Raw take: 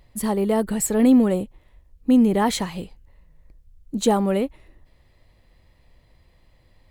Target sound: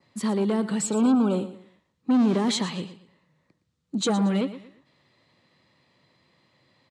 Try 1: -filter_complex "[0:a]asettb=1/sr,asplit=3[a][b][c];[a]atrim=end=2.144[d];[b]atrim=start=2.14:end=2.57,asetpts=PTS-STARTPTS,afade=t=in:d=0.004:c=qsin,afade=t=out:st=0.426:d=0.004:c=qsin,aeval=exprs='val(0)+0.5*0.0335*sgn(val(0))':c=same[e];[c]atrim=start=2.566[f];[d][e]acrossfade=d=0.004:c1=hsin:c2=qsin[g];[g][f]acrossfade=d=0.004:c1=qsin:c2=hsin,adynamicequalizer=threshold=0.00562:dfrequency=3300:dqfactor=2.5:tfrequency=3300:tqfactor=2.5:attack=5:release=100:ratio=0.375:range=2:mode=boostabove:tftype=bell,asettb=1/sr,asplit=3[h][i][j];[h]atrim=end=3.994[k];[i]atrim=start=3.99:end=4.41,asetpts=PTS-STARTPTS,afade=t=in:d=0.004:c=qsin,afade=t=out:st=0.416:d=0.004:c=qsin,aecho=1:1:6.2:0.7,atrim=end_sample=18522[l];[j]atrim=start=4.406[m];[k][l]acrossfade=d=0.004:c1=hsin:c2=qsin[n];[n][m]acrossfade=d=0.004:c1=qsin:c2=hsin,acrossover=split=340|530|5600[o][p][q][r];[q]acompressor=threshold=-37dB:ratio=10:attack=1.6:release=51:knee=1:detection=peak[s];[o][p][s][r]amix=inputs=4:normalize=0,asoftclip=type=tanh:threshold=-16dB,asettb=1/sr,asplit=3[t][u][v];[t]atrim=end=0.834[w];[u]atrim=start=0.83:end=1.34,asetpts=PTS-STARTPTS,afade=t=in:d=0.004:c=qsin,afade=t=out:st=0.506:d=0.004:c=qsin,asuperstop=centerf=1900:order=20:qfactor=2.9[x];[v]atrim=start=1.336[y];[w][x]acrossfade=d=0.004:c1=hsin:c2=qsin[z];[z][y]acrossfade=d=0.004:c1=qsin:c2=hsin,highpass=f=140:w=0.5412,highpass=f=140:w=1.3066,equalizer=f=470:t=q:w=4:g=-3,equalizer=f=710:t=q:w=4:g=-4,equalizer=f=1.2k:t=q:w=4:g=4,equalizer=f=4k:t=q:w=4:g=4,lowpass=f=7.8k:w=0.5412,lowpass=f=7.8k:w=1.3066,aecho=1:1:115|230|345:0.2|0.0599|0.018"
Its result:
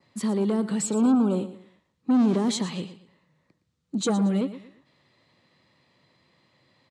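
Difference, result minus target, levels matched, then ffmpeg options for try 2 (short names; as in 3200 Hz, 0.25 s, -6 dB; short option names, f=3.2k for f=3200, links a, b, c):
compressor: peak gain reduction +7 dB
-filter_complex "[0:a]asettb=1/sr,asplit=3[a][b][c];[a]atrim=end=2.144[d];[b]atrim=start=2.14:end=2.57,asetpts=PTS-STARTPTS,afade=t=in:d=0.004:c=qsin,afade=t=out:st=0.426:d=0.004:c=qsin,aeval=exprs='val(0)+0.5*0.0335*sgn(val(0))':c=same[e];[c]atrim=start=2.566[f];[d][e]acrossfade=d=0.004:c1=hsin:c2=qsin[g];[g][f]acrossfade=d=0.004:c1=qsin:c2=hsin,adynamicequalizer=threshold=0.00562:dfrequency=3300:dqfactor=2.5:tfrequency=3300:tqfactor=2.5:attack=5:release=100:ratio=0.375:range=2:mode=boostabove:tftype=bell,asettb=1/sr,asplit=3[h][i][j];[h]atrim=end=3.994[k];[i]atrim=start=3.99:end=4.41,asetpts=PTS-STARTPTS,afade=t=in:d=0.004:c=qsin,afade=t=out:st=0.416:d=0.004:c=qsin,aecho=1:1:6.2:0.7,atrim=end_sample=18522[l];[j]atrim=start=4.406[m];[k][l]acrossfade=d=0.004:c1=hsin:c2=qsin[n];[n][m]acrossfade=d=0.004:c1=qsin:c2=hsin,acrossover=split=340|530|5600[o][p][q][r];[q]acompressor=threshold=-29dB:ratio=10:attack=1.6:release=51:knee=1:detection=peak[s];[o][p][s][r]amix=inputs=4:normalize=0,asoftclip=type=tanh:threshold=-16dB,asettb=1/sr,asplit=3[t][u][v];[t]atrim=end=0.834[w];[u]atrim=start=0.83:end=1.34,asetpts=PTS-STARTPTS,afade=t=in:d=0.004:c=qsin,afade=t=out:st=0.506:d=0.004:c=qsin,asuperstop=centerf=1900:order=20:qfactor=2.9[x];[v]atrim=start=1.336[y];[w][x]acrossfade=d=0.004:c1=hsin:c2=qsin[z];[z][y]acrossfade=d=0.004:c1=qsin:c2=hsin,highpass=f=140:w=0.5412,highpass=f=140:w=1.3066,equalizer=f=470:t=q:w=4:g=-3,equalizer=f=710:t=q:w=4:g=-4,equalizer=f=1.2k:t=q:w=4:g=4,equalizer=f=4k:t=q:w=4:g=4,lowpass=f=7.8k:w=0.5412,lowpass=f=7.8k:w=1.3066,aecho=1:1:115|230|345:0.2|0.0599|0.018"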